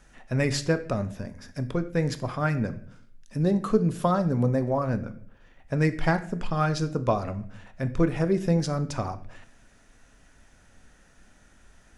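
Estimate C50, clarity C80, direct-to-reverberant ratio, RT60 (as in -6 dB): 14.5 dB, 18.0 dB, 9.5 dB, 0.60 s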